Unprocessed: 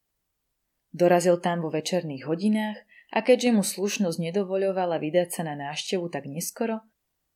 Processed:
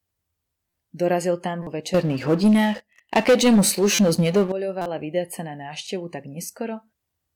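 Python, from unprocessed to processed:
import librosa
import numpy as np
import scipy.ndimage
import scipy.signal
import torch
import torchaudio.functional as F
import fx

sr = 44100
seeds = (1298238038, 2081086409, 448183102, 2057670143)

y = scipy.signal.sosfilt(scipy.signal.butter(2, 42.0, 'highpass', fs=sr, output='sos'), x)
y = fx.peak_eq(y, sr, hz=86.0, db=15.0, octaves=0.5)
y = fx.leveller(y, sr, passes=3, at=(1.94, 4.52))
y = fx.buffer_glitch(y, sr, at_s=(0.69, 1.62, 3.94, 4.81), block=256, repeats=7)
y = y * librosa.db_to_amplitude(-2.0)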